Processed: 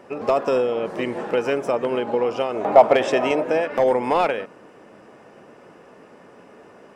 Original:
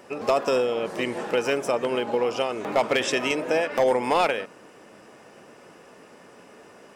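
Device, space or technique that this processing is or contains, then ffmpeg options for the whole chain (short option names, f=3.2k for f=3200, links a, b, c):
through cloth: -filter_complex "[0:a]highshelf=f=2.9k:g=-12,asettb=1/sr,asplit=3[a][b][c];[a]atrim=end=2.544[d];[b]atrim=start=2.54:end=3.43,asetpts=PTS-STARTPTS,afade=t=in:d=0.004:c=qsin,afade=t=out:st=0.886:d=0.004:c=qsin,equalizer=f=710:t=o:w=0.85:g=11[e];[c]atrim=start=3.426[f];[d][e]acrossfade=d=0.004:c1=hsin:c2=qsin[g];[g][f]acrossfade=d=0.004:c1=qsin:c2=hsin,volume=3dB"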